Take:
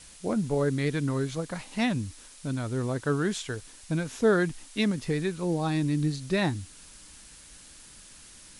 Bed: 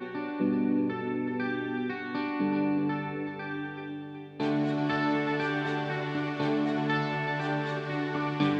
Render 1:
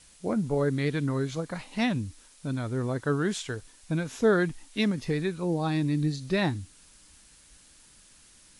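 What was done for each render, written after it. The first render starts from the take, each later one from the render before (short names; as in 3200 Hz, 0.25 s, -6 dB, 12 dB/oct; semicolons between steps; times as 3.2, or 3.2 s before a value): noise print and reduce 6 dB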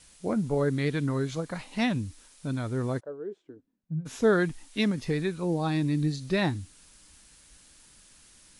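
2.99–4.05 band-pass 650 Hz -> 140 Hz, Q 6.5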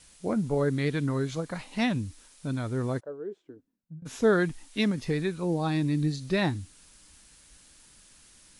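3.45–4.02 fade out equal-power, to -20 dB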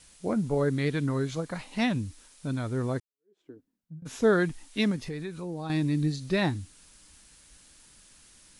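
3–3.41 fade in exponential; 4.96–5.7 compressor 2.5:1, threshold -35 dBFS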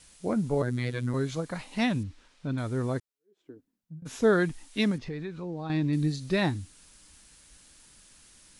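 0.62–1.14 robotiser 123 Hz; 2.03–2.58 LPF 3600 Hz; 4.98–5.93 air absorption 130 m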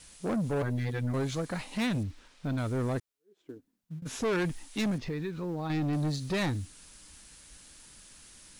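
in parallel at -8.5 dB: short-mantissa float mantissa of 2-bit; on the sum: soft clip -26 dBFS, distortion -7 dB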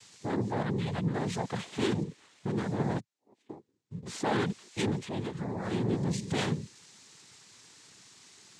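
noise vocoder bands 6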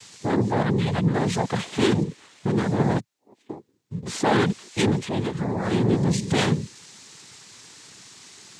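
gain +9 dB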